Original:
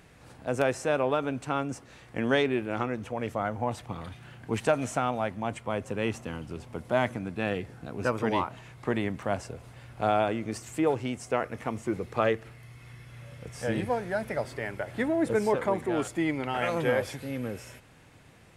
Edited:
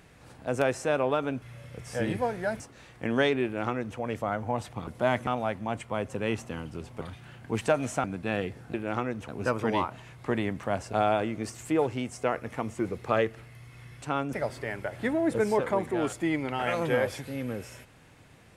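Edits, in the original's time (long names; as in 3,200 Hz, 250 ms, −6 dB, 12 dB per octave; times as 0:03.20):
0:01.42–0:01.73: swap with 0:13.10–0:14.28
0:02.57–0:03.11: duplicate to 0:07.87
0:04.00–0:05.03: swap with 0:06.77–0:07.17
0:09.51–0:10.00: remove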